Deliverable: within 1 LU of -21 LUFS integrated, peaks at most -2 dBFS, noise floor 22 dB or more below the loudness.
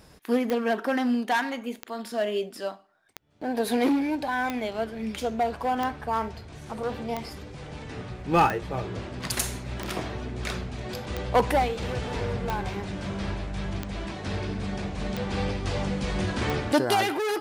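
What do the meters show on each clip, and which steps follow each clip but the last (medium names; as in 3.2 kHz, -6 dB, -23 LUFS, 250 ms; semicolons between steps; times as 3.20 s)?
clicks found 13; loudness -28.5 LUFS; peak level -10.5 dBFS; loudness target -21.0 LUFS
-> de-click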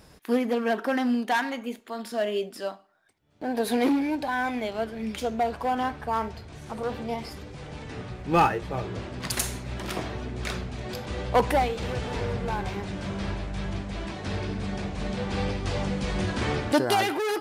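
clicks found 0; loudness -28.5 LUFS; peak level -10.5 dBFS; loudness target -21.0 LUFS
-> trim +7.5 dB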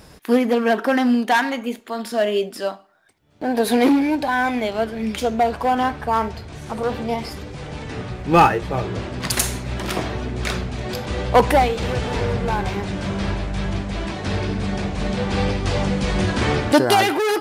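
loudness -21.0 LUFS; peak level -3.0 dBFS; noise floor -45 dBFS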